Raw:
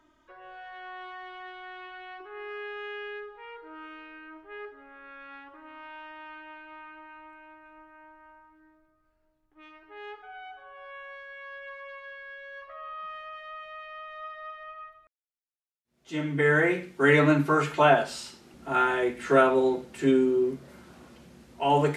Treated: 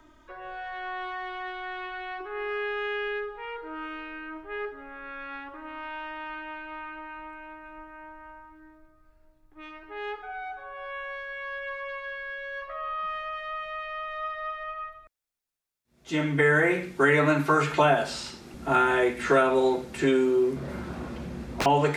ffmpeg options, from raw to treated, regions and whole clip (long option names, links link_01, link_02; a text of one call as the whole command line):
ffmpeg -i in.wav -filter_complex "[0:a]asettb=1/sr,asplit=3[link_01][link_02][link_03];[link_01]atrim=end=20.564[link_04];[link_02]atrim=start=20.56:end=21.66,asetpts=PTS-STARTPTS,afade=type=in:duration=0.004:curve=qsin,afade=type=out:start_time=1.096:duration=0.004:curve=qsin,highshelf=frequency=3600:gain=-11,acontrast=76,aeval=exprs='(mod(18.8*val(0)+1,2)-1)/18.8':channel_layout=same[link_05];[link_03]atrim=start=21.656[link_06];[link_04][link_05]acrossfade=duration=0.004:curve1=hsin:curve2=qsin[link_07];[link_07][link_06]acrossfade=duration=0.004:curve1=qsin:curve2=hsin,bandreject=frequency=3000:width=23,acrossover=split=490|2200|6900[link_08][link_09][link_10][link_11];[link_08]acompressor=threshold=-35dB:ratio=4[link_12];[link_09]acompressor=threshold=-29dB:ratio=4[link_13];[link_10]acompressor=threshold=-42dB:ratio=4[link_14];[link_11]acompressor=threshold=-59dB:ratio=4[link_15];[link_12][link_13][link_14][link_15]amix=inputs=4:normalize=0,lowshelf=frequency=82:gain=9,volume=7dB" out.wav